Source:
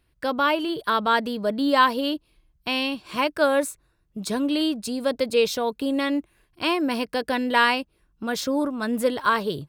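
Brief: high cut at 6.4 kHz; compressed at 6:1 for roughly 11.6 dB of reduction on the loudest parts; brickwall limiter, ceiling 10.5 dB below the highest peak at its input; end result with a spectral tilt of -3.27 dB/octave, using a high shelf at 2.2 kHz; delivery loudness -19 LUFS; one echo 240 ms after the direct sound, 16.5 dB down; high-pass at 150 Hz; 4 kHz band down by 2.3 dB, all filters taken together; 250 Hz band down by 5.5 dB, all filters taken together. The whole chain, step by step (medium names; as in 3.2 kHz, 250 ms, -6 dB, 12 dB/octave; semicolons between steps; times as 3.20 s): high-pass 150 Hz; low-pass 6.4 kHz; peaking EQ 250 Hz -6 dB; treble shelf 2.2 kHz +5 dB; peaking EQ 4 kHz -7.5 dB; compression 6:1, threshold -26 dBFS; peak limiter -24 dBFS; delay 240 ms -16.5 dB; trim +15 dB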